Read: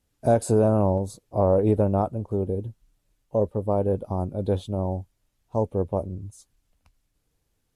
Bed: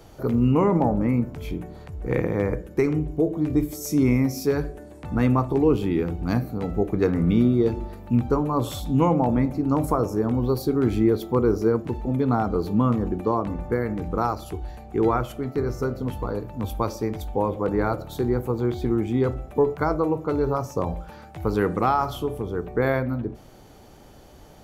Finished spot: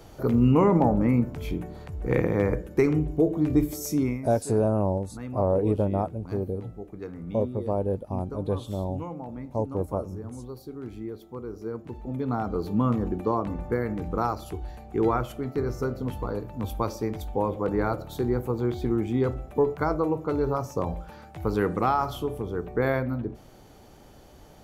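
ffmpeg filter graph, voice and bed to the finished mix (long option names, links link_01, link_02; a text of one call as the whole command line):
ffmpeg -i stem1.wav -i stem2.wav -filter_complex "[0:a]adelay=4000,volume=-3.5dB[link_01];[1:a]volume=14dB,afade=type=out:start_time=3.79:duration=0.43:silence=0.149624,afade=type=in:start_time=11.52:duration=1.43:silence=0.199526[link_02];[link_01][link_02]amix=inputs=2:normalize=0" out.wav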